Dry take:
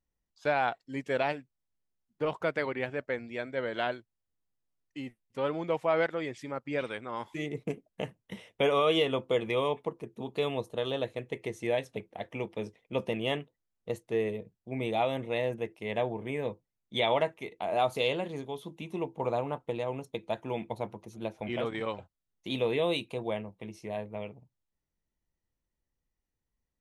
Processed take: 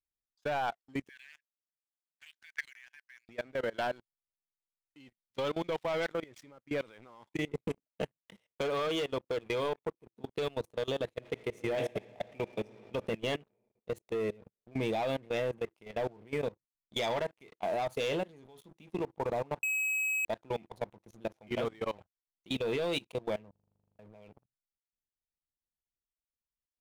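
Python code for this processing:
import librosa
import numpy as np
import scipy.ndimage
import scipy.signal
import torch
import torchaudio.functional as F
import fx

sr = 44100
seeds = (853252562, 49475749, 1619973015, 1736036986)

y = fx.brickwall_bandpass(x, sr, low_hz=1500.0, high_hz=7200.0, at=(1.09, 3.29))
y = fx.peak_eq(y, sr, hz=3900.0, db=11.0, octaves=1.3, at=(5.0, 6.09))
y = fx.transient(y, sr, attack_db=3, sustain_db=-8, at=(7.24, 10.56))
y = fx.reverb_throw(y, sr, start_s=11.17, length_s=1.62, rt60_s=2.9, drr_db=5.0)
y = fx.edit(y, sr, fx.bleep(start_s=19.63, length_s=0.62, hz=2550.0, db=-12.0),
    fx.stutter_over(start_s=23.51, slice_s=0.04, count=12), tone=tone)
y = fx.leveller(y, sr, passes=3)
y = fx.level_steps(y, sr, step_db=23)
y = y * librosa.db_to_amplitude(-8.5)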